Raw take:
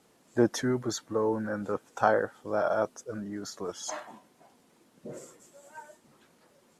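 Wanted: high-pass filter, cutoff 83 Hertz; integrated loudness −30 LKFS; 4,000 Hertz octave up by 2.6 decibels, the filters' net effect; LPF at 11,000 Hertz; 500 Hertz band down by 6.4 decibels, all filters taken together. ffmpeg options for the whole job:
ffmpeg -i in.wav -af "highpass=83,lowpass=11000,equalizer=frequency=500:width_type=o:gain=-8.5,equalizer=frequency=4000:width_type=o:gain=3.5,volume=4dB" out.wav

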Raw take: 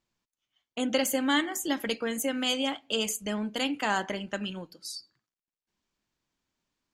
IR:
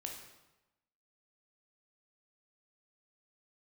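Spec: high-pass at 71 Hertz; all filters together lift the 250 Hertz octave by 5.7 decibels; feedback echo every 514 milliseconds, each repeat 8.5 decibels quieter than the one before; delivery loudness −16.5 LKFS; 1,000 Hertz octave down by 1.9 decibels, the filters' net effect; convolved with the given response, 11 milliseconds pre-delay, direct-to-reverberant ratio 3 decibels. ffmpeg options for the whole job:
-filter_complex "[0:a]highpass=71,equalizer=frequency=250:width_type=o:gain=6.5,equalizer=frequency=1000:width_type=o:gain=-3,aecho=1:1:514|1028|1542|2056:0.376|0.143|0.0543|0.0206,asplit=2[link_01][link_02];[1:a]atrim=start_sample=2205,adelay=11[link_03];[link_02][link_03]afir=irnorm=-1:irlink=0,volume=-1dB[link_04];[link_01][link_04]amix=inputs=2:normalize=0,volume=8dB"

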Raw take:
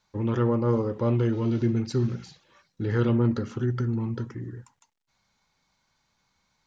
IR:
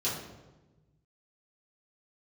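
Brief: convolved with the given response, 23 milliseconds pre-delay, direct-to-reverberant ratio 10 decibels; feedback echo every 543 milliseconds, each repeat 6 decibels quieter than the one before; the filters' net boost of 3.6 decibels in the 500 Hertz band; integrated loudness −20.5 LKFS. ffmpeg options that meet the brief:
-filter_complex "[0:a]equalizer=frequency=500:width_type=o:gain=4.5,aecho=1:1:543|1086|1629|2172|2715|3258:0.501|0.251|0.125|0.0626|0.0313|0.0157,asplit=2[link_01][link_02];[1:a]atrim=start_sample=2205,adelay=23[link_03];[link_02][link_03]afir=irnorm=-1:irlink=0,volume=-17dB[link_04];[link_01][link_04]amix=inputs=2:normalize=0,volume=2dB"

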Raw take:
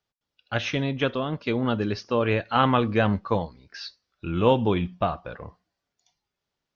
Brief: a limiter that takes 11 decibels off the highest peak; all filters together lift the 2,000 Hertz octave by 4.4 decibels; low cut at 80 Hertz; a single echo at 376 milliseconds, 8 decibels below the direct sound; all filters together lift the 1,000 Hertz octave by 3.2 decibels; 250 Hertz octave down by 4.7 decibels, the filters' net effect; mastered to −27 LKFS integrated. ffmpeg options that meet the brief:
ffmpeg -i in.wav -af "highpass=80,equalizer=frequency=250:width_type=o:gain=-6,equalizer=frequency=1000:width_type=o:gain=3,equalizer=frequency=2000:width_type=o:gain=5,alimiter=limit=-14.5dB:level=0:latency=1,aecho=1:1:376:0.398,volume=1dB" out.wav

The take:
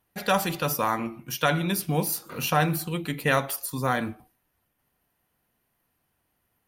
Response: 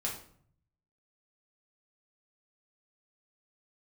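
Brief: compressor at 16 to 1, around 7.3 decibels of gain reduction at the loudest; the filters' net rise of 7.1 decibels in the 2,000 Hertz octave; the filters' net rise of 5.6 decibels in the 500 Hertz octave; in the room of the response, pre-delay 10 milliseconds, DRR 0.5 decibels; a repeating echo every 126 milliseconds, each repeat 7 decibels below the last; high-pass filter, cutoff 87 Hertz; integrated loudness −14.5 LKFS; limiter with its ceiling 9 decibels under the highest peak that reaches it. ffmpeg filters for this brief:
-filter_complex "[0:a]highpass=87,equalizer=frequency=500:width_type=o:gain=6,equalizer=frequency=2000:width_type=o:gain=9,acompressor=threshold=-19dB:ratio=16,alimiter=limit=-15.5dB:level=0:latency=1,aecho=1:1:126|252|378|504|630:0.447|0.201|0.0905|0.0407|0.0183,asplit=2[link_01][link_02];[1:a]atrim=start_sample=2205,adelay=10[link_03];[link_02][link_03]afir=irnorm=-1:irlink=0,volume=-3.5dB[link_04];[link_01][link_04]amix=inputs=2:normalize=0,volume=10dB"

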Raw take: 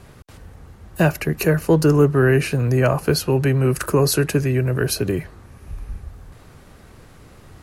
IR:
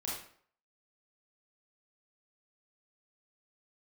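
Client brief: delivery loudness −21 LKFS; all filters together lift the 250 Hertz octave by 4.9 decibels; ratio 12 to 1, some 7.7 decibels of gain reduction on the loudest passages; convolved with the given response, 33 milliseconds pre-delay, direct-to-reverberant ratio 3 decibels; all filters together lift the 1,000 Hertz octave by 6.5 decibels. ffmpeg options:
-filter_complex "[0:a]equalizer=frequency=250:width_type=o:gain=6.5,equalizer=frequency=1000:width_type=o:gain=8,acompressor=threshold=-14dB:ratio=12,asplit=2[link_01][link_02];[1:a]atrim=start_sample=2205,adelay=33[link_03];[link_02][link_03]afir=irnorm=-1:irlink=0,volume=-5dB[link_04];[link_01][link_04]amix=inputs=2:normalize=0,volume=-2.5dB"

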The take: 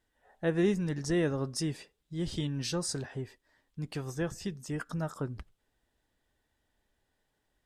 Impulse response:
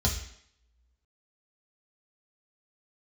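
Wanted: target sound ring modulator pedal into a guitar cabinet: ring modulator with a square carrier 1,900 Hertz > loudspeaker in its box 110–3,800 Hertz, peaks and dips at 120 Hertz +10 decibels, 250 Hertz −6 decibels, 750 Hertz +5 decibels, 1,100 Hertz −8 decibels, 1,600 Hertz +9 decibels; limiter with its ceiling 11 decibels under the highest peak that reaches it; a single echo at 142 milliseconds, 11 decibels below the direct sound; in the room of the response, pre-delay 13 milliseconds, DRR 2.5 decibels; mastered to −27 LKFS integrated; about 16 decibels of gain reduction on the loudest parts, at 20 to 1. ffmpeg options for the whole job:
-filter_complex "[0:a]acompressor=threshold=-39dB:ratio=20,alimiter=level_in=16dB:limit=-24dB:level=0:latency=1,volume=-16dB,aecho=1:1:142:0.282,asplit=2[link_01][link_02];[1:a]atrim=start_sample=2205,adelay=13[link_03];[link_02][link_03]afir=irnorm=-1:irlink=0,volume=-10.5dB[link_04];[link_01][link_04]amix=inputs=2:normalize=0,aeval=exprs='val(0)*sgn(sin(2*PI*1900*n/s))':channel_layout=same,highpass=110,equalizer=frequency=120:width_type=q:width=4:gain=10,equalizer=frequency=250:width_type=q:width=4:gain=-6,equalizer=frequency=750:width_type=q:width=4:gain=5,equalizer=frequency=1100:width_type=q:width=4:gain=-8,equalizer=frequency=1600:width_type=q:width=4:gain=9,lowpass=frequency=3800:width=0.5412,lowpass=frequency=3800:width=1.3066,volume=8dB"

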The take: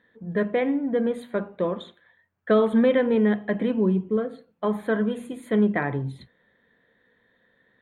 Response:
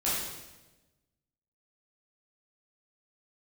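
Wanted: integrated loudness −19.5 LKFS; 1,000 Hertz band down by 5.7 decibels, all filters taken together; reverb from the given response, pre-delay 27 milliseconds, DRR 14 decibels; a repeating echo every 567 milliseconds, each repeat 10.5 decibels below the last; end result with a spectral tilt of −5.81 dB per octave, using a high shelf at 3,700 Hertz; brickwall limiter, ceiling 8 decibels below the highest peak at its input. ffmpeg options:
-filter_complex "[0:a]equalizer=frequency=1000:width_type=o:gain=-8.5,highshelf=frequency=3700:gain=4,alimiter=limit=-19.5dB:level=0:latency=1,aecho=1:1:567|1134|1701:0.299|0.0896|0.0269,asplit=2[link_01][link_02];[1:a]atrim=start_sample=2205,adelay=27[link_03];[link_02][link_03]afir=irnorm=-1:irlink=0,volume=-23dB[link_04];[link_01][link_04]amix=inputs=2:normalize=0,volume=9.5dB"

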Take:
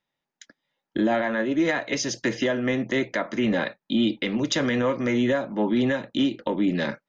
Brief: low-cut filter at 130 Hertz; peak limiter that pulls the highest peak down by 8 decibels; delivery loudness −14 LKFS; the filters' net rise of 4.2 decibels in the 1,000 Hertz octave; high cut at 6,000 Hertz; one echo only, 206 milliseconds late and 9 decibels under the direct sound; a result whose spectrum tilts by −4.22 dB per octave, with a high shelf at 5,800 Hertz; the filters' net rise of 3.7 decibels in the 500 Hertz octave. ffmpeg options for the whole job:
ffmpeg -i in.wav -af "highpass=130,lowpass=6000,equalizer=frequency=500:width_type=o:gain=3.5,equalizer=frequency=1000:width_type=o:gain=4.5,highshelf=frequency=5800:gain=-8.5,alimiter=limit=-16.5dB:level=0:latency=1,aecho=1:1:206:0.355,volume=11.5dB" out.wav

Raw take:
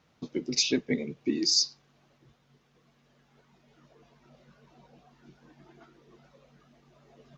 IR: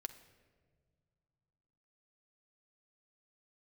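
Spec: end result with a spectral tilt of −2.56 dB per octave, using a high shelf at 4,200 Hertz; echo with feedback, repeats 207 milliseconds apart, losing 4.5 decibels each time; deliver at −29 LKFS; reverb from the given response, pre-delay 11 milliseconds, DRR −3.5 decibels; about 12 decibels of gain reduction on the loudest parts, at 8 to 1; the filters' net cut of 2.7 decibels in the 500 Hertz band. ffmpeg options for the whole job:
-filter_complex "[0:a]equalizer=frequency=500:width_type=o:gain=-4,highshelf=frequency=4200:gain=5.5,acompressor=threshold=-30dB:ratio=8,aecho=1:1:207|414|621|828|1035|1242|1449|1656|1863:0.596|0.357|0.214|0.129|0.0772|0.0463|0.0278|0.0167|0.01,asplit=2[link_01][link_02];[1:a]atrim=start_sample=2205,adelay=11[link_03];[link_02][link_03]afir=irnorm=-1:irlink=0,volume=6.5dB[link_04];[link_01][link_04]amix=inputs=2:normalize=0"

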